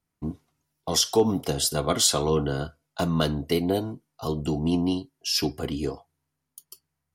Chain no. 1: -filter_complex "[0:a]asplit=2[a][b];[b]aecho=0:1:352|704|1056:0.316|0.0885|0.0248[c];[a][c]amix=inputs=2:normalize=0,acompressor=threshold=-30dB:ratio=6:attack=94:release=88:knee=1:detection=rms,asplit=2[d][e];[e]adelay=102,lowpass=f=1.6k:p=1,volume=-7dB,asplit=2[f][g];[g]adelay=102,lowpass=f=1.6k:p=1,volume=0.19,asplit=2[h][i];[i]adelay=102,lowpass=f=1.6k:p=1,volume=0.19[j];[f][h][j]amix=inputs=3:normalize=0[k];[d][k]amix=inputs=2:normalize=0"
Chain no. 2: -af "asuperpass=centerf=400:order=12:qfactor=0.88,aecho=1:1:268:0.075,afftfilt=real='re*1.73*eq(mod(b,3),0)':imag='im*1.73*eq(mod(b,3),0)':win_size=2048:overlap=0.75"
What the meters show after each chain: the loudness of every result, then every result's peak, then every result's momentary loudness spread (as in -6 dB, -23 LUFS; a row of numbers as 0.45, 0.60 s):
-29.5, -31.0 LUFS; -14.0, -10.5 dBFS; 14, 17 LU